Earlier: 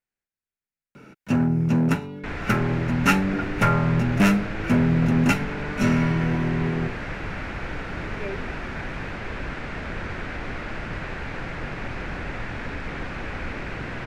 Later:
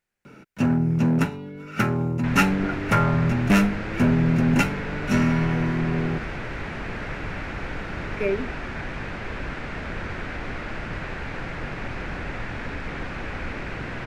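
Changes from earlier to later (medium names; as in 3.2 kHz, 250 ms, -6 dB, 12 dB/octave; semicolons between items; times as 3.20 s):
speech +9.5 dB; first sound: entry -0.70 s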